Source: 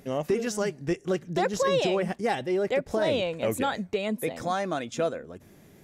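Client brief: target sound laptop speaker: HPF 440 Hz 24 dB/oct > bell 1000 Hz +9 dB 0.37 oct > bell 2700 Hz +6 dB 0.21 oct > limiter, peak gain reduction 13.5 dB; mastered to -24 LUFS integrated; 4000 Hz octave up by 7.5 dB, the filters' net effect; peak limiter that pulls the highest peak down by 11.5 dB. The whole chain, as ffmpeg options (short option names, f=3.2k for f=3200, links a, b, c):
-af "equalizer=f=4k:t=o:g=8,alimiter=level_in=0.5dB:limit=-24dB:level=0:latency=1,volume=-0.5dB,highpass=f=440:w=0.5412,highpass=f=440:w=1.3066,equalizer=f=1k:t=o:w=0.37:g=9,equalizer=f=2.7k:t=o:w=0.21:g=6,volume=18.5dB,alimiter=limit=-15dB:level=0:latency=1"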